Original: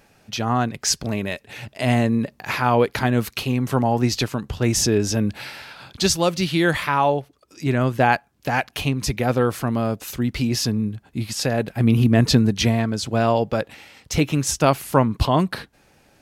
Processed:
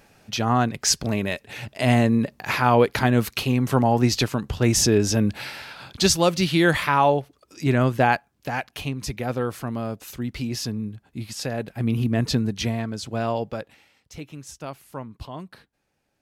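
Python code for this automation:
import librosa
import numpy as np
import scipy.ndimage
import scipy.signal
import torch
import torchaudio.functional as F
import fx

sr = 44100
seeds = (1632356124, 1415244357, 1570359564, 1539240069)

y = fx.gain(x, sr, db=fx.line((7.81, 0.5), (8.62, -6.5), (13.43, -6.5), (14.13, -18.0)))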